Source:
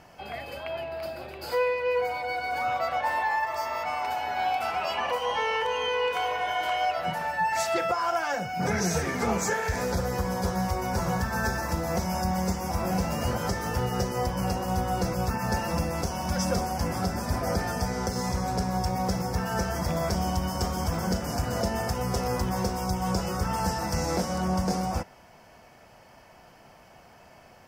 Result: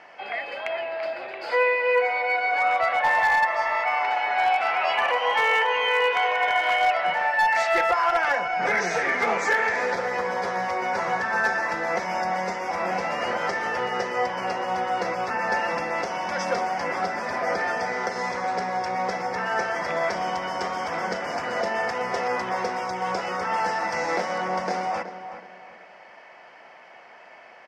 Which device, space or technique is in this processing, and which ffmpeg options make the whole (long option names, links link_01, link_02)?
megaphone: -filter_complex "[0:a]highpass=460,lowpass=3500,equalizer=frequency=2000:width_type=o:width=0.51:gain=8,asoftclip=type=hard:threshold=-20dB,asettb=1/sr,asplit=3[link_01][link_02][link_03];[link_01]atrim=end=5.054[link_04];[link_02]atrim=start=5.05:end=6.15,asetpts=PTS-STARTPTS,afade=type=in:duration=0.004:curve=qsin,afade=type=out:start_time=1.096:duration=0.004:curve=qsin,highpass=frequency=110:width=0.5412,highpass=frequency=110:width=1.3066[link_05];[link_03]atrim=start=6.146[link_06];[link_04][link_05]acrossfade=duration=0.004:curve1=hsin:curve2=qsin[link_07];[link_07][link_06]acrossfade=duration=0.004:curve1=qsin:curve2=hsin,asplit=2[link_08][link_09];[link_09]adelay=373,lowpass=frequency=2300:poles=1,volume=-10.5dB,asplit=2[link_10][link_11];[link_11]adelay=373,lowpass=frequency=2300:poles=1,volume=0.35,asplit=2[link_12][link_13];[link_13]adelay=373,lowpass=frequency=2300:poles=1,volume=0.35,asplit=2[link_14][link_15];[link_15]adelay=373,lowpass=frequency=2300:poles=1,volume=0.35[link_16];[link_08][link_10][link_12][link_14][link_16]amix=inputs=5:normalize=0,volume=5dB"